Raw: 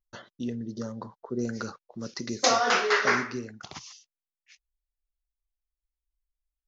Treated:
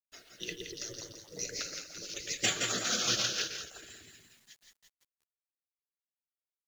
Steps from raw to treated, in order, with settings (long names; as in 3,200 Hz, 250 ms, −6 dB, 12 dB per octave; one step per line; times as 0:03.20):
drawn EQ curve 210 Hz 0 dB, 660 Hz −10 dB, 980 Hz −26 dB, 2,200 Hz +9 dB
echo with a time of its own for lows and highs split 1,800 Hz, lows 120 ms, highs 169 ms, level −4 dB
gate on every frequency bin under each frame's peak −15 dB weak
rotating-speaker cabinet horn 5.5 Hz
log-companded quantiser 6 bits
level +4.5 dB